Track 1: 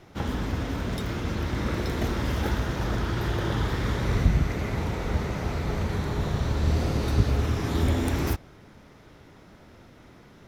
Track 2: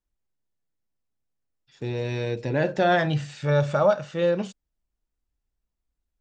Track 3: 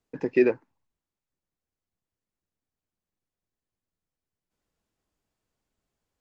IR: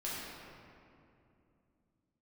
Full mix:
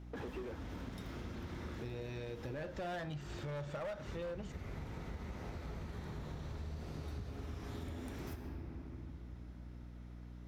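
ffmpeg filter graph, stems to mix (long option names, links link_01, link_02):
-filter_complex "[0:a]volume=-15.5dB,asplit=2[link_01][link_02];[link_02]volume=-5dB[link_03];[1:a]volume=-5.5dB,asplit=2[link_04][link_05];[2:a]volume=19dB,asoftclip=hard,volume=-19dB,asplit=2[link_06][link_07];[link_07]highpass=frequency=720:poles=1,volume=32dB,asoftclip=type=tanh:threshold=-22dB[link_08];[link_06][link_08]amix=inputs=2:normalize=0,lowpass=frequency=1100:poles=1,volume=-6dB,volume=-11dB[link_09];[link_05]apad=whole_len=462016[link_10];[link_01][link_10]sidechaincompress=threshold=-38dB:ratio=8:attack=16:release=160[link_11];[3:a]atrim=start_sample=2205[link_12];[link_03][link_12]afir=irnorm=-1:irlink=0[link_13];[link_11][link_04][link_09][link_13]amix=inputs=4:normalize=0,volume=25dB,asoftclip=hard,volume=-25dB,aeval=exprs='val(0)+0.00355*(sin(2*PI*60*n/s)+sin(2*PI*2*60*n/s)/2+sin(2*PI*3*60*n/s)/3+sin(2*PI*4*60*n/s)/4+sin(2*PI*5*60*n/s)/5)':channel_layout=same,acompressor=threshold=-41dB:ratio=6"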